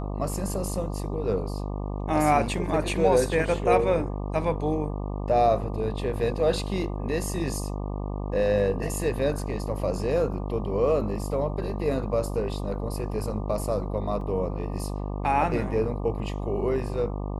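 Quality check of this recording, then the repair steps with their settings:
buzz 50 Hz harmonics 24 -31 dBFS
14.21 gap 2.4 ms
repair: de-hum 50 Hz, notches 24; interpolate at 14.21, 2.4 ms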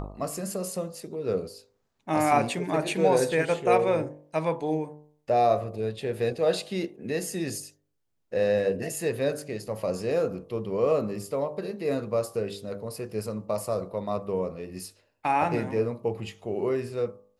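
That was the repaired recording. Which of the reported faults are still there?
none

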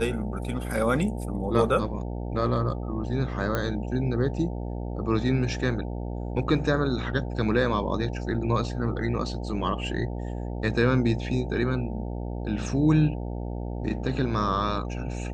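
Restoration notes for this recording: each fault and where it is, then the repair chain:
buzz 60 Hz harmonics 15 -32 dBFS
3.55 pop -13 dBFS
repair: de-click; de-hum 60 Hz, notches 15

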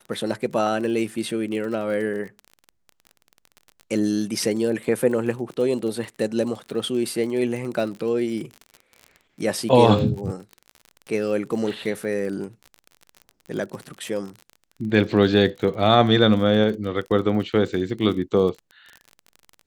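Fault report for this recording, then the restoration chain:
crackle 36/s -31 dBFS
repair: de-click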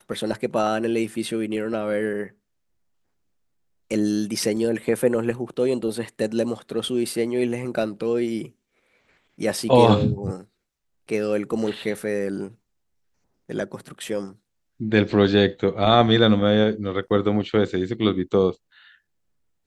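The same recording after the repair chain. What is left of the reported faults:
none

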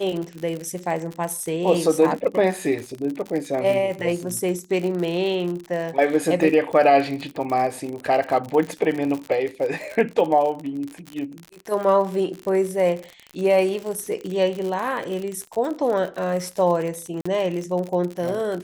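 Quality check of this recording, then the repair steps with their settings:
crackle 60/s -27 dBFS
17.21–17.25 gap 45 ms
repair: de-click; interpolate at 17.21, 45 ms

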